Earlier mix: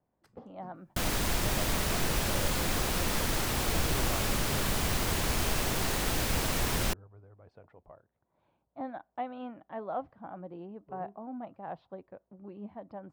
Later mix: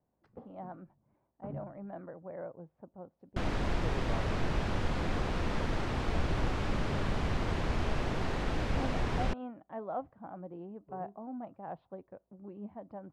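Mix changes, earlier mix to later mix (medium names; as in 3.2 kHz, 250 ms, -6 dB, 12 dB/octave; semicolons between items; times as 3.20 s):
second sound: entry +2.40 s; master: add tape spacing loss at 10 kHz 28 dB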